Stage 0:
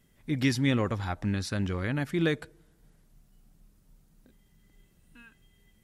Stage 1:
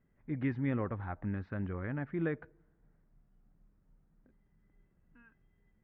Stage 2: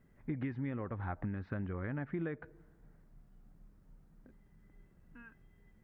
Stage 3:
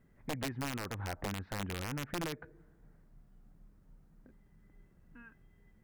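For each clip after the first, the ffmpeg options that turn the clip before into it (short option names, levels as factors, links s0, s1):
-af "lowpass=f=1900:w=0.5412,lowpass=f=1900:w=1.3066,volume=0.447"
-af "acompressor=threshold=0.00891:ratio=12,volume=2.24"
-af "aeval=exprs='(mod(31.6*val(0)+1,2)-1)/31.6':c=same"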